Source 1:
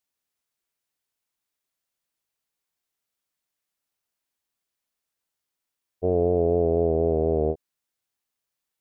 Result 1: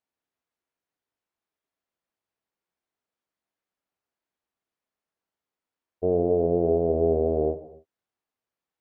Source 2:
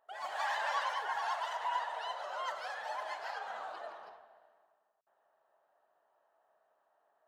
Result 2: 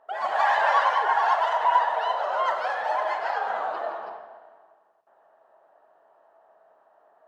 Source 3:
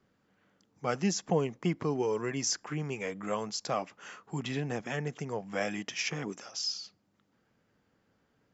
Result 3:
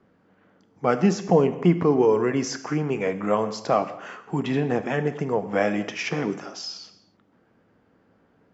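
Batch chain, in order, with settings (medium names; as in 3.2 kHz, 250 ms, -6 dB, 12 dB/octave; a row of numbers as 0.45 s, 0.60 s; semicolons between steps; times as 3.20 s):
low-pass 1 kHz 6 dB/octave; bass shelf 110 Hz -10 dB; in parallel at 0 dB: peak limiter -22 dBFS; on the sum: gated-style reverb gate 310 ms falling, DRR 9.5 dB; normalise loudness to -24 LUFS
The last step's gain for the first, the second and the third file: -2.5 dB, +10.5 dB, +7.0 dB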